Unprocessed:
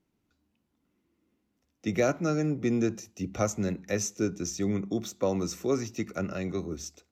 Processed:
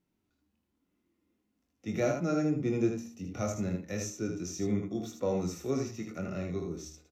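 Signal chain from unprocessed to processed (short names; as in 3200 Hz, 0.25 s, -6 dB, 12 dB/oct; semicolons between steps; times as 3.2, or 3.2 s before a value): de-hum 77.65 Hz, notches 16; harmonic-percussive split percussive -9 dB; early reflections 23 ms -6.5 dB, 78 ms -5.5 dB; gain -1.5 dB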